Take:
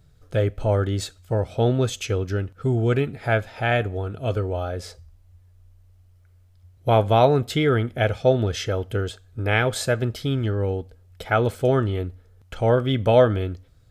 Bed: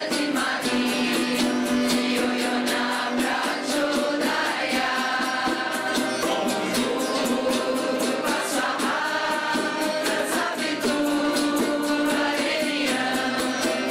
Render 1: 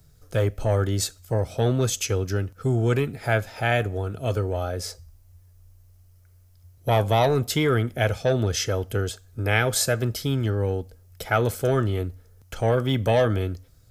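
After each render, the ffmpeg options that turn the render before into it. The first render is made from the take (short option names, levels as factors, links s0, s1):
-filter_complex "[0:a]acrossover=split=120|1200|3200[s0][s1][s2][s3];[s1]asoftclip=type=tanh:threshold=0.158[s4];[s0][s4][s2][s3]amix=inputs=4:normalize=0,aexciter=amount=2.6:drive=5.3:freq=4900"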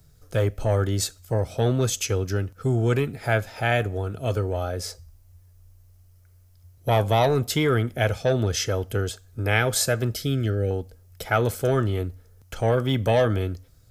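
-filter_complex "[0:a]asettb=1/sr,asplit=3[s0][s1][s2];[s0]atrim=end=10.144[s3];[s1]atrim=start=10.14:end=10.71,asetpts=PTS-STARTPTS,afade=t=in:d=0.004:c=qsin,afade=t=out:st=0.566:d=0.004:c=qsin,asuperstop=centerf=970:order=8:qfactor=2[s4];[s2]atrim=start=10.706[s5];[s3][s4]acrossfade=d=0.004:c1=hsin:c2=qsin[s6];[s6][s5]acrossfade=d=0.004:c1=qsin:c2=hsin"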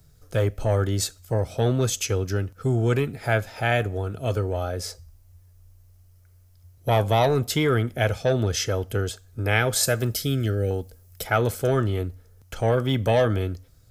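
-filter_complex "[0:a]asettb=1/sr,asplit=3[s0][s1][s2];[s0]atrim=end=9.834[s3];[s1]atrim=start=9.83:end=11.27,asetpts=PTS-STARTPTS,afade=t=in:d=0.004:c=qsin,afade=t=out:st=1.436:d=0.004:c=qsin,highshelf=f=6300:g=8.5[s4];[s2]atrim=start=11.266[s5];[s3][s4]acrossfade=d=0.004:c1=hsin:c2=qsin[s6];[s6][s5]acrossfade=d=0.004:c1=qsin:c2=hsin"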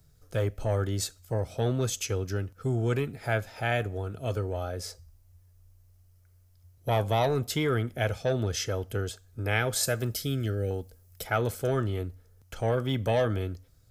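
-af "volume=0.531"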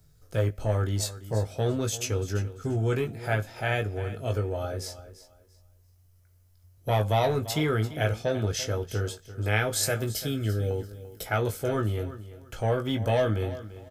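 -filter_complex "[0:a]asplit=2[s0][s1];[s1]adelay=19,volume=0.501[s2];[s0][s2]amix=inputs=2:normalize=0,aecho=1:1:341|682|1023:0.178|0.0427|0.0102"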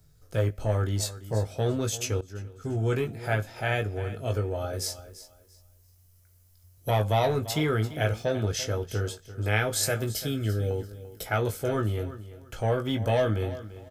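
-filter_complex "[0:a]asettb=1/sr,asplit=3[s0][s1][s2];[s0]atrim=end=4.734[s3];[s1]atrim=start=4.73:end=6.91,asetpts=PTS-STARTPTS,afade=t=in:d=0.004:c=qsin,afade=t=out:st=2.176:d=0.004:c=qsin,highshelf=f=4000:g=9[s4];[s2]atrim=start=6.906[s5];[s3][s4]acrossfade=d=0.004:c1=hsin:c2=qsin[s6];[s6][s5]acrossfade=d=0.004:c1=qsin:c2=hsin,asettb=1/sr,asplit=3[s7][s8][s9];[s7]atrim=end=7.524[s10];[s8]atrim=start=7.52:end=8.33,asetpts=PTS-STARTPTS,afade=t=in:d=0.004:c=qsin,afade=t=out:st=0.806:d=0.004:c=qsin,aeval=exprs='val(0)*gte(abs(val(0)),0.002)':c=same[s11];[s9]atrim=start=8.326[s12];[s10][s11]acrossfade=d=0.004:c1=hsin:c2=qsin[s13];[s13][s12]acrossfade=d=0.004:c1=qsin:c2=hsin,asplit=2[s14][s15];[s14]atrim=end=2.21,asetpts=PTS-STARTPTS,afade=t=out:st=2.206:d=0.004:c=hsin:silence=0.112202[s16];[s15]atrim=start=2.21,asetpts=PTS-STARTPTS,afade=t=in:d=0.66:silence=0.112202[s17];[s16][s17]concat=n=2:v=0:a=1"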